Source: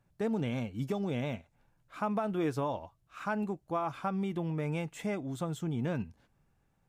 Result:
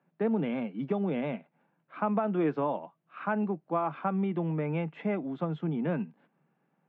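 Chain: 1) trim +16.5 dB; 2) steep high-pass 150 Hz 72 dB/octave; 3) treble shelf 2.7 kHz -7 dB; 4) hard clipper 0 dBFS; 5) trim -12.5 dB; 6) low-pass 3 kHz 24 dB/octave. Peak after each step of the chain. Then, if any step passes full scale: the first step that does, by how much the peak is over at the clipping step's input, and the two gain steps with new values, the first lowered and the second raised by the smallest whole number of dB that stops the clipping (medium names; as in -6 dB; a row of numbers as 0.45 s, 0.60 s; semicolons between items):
-5.5 dBFS, -3.0 dBFS, -3.5 dBFS, -3.5 dBFS, -16.0 dBFS, -16.0 dBFS; nothing clips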